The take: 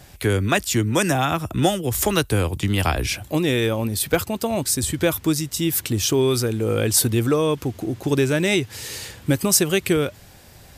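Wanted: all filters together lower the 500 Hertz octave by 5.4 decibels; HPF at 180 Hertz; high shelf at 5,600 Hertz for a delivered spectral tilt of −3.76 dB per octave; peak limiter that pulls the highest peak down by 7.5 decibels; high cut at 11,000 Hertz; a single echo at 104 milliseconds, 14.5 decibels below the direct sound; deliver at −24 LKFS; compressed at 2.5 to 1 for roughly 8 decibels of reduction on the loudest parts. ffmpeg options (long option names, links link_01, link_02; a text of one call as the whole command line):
ffmpeg -i in.wav -af "highpass=180,lowpass=11000,equalizer=frequency=500:width_type=o:gain=-7,highshelf=frequency=5600:gain=5,acompressor=threshold=-23dB:ratio=2.5,alimiter=limit=-17dB:level=0:latency=1,aecho=1:1:104:0.188,volume=4dB" out.wav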